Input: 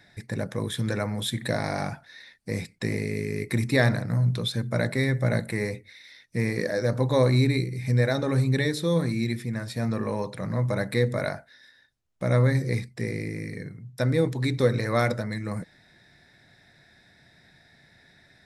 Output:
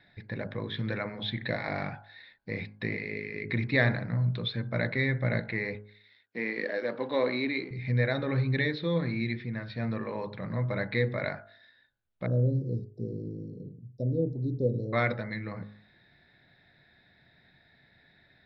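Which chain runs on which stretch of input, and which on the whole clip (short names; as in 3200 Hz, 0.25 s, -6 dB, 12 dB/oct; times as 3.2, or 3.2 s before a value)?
5.75–7.71 G.711 law mismatch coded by A + HPF 230 Hz 24 dB/oct
12.26–14.93 inverse Chebyshev band-stop 1200–3000 Hz, stop band 60 dB + high shelf 9400 Hz +12 dB
whole clip: steep low-pass 4300 Hz 48 dB/oct; de-hum 52.06 Hz, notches 32; dynamic EQ 2100 Hz, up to +6 dB, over -47 dBFS, Q 2; gain -4.5 dB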